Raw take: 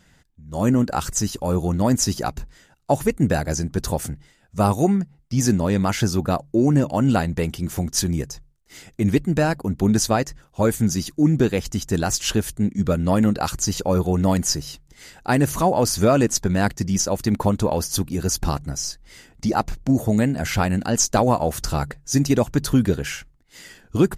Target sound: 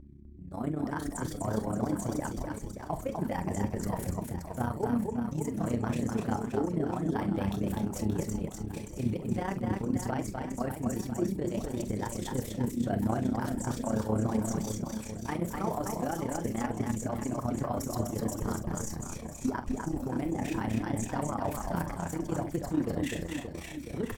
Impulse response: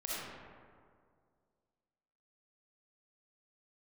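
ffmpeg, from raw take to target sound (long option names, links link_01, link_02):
-filter_complex "[0:a]agate=range=-25dB:threshold=-45dB:ratio=16:detection=peak,areverse,acompressor=threshold=-26dB:ratio=20,areverse,alimiter=limit=-22.5dB:level=0:latency=1:release=224,asplit=2[link_01][link_02];[link_02]adynamicsmooth=sensitivity=1:basefreq=1700,volume=1dB[link_03];[link_01][link_03]amix=inputs=2:normalize=0,aeval=exprs='val(0)+0.00891*(sin(2*PI*60*n/s)+sin(2*PI*2*60*n/s)/2+sin(2*PI*3*60*n/s)/3+sin(2*PI*4*60*n/s)/4+sin(2*PI*5*60*n/s)/5)':channel_layout=same,flanger=delay=4.1:depth=7.5:regen=35:speed=1.8:shape=sinusoidal,asetrate=52444,aresample=44100,atempo=0.840896,tremolo=f=31:d=0.75,asplit=2[link_04][link_05];[link_05]adelay=46,volume=-12dB[link_06];[link_04][link_06]amix=inputs=2:normalize=0,aecho=1:1:250|575|997.5|1547|2261:0.631|0.398|0.251|0.158|0.1"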